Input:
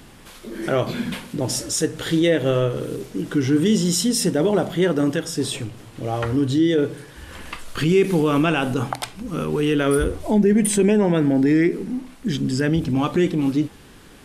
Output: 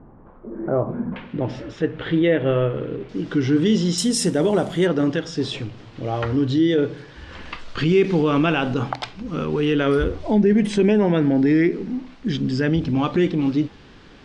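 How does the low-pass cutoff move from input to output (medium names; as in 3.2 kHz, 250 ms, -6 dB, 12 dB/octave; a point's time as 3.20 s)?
low-pass 24 dB/octave
1.1 kHz
from 1.16 s 2.9 kHz
from 3.09 s 5.2 kHz
from 3.98 s 10 kHz
from 4.87 s 5.3 kHz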